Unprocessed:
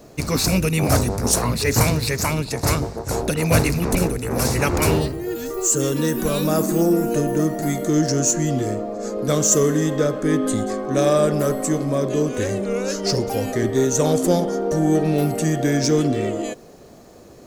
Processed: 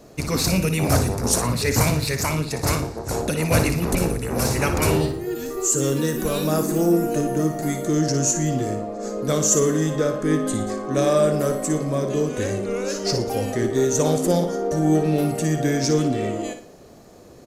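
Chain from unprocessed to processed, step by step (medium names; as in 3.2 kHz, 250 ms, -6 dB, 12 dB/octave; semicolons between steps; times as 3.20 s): on a send: flutter echo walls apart 10 m, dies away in 0.38 s; on the sum: resampled via 32 kHz; trim -2 dB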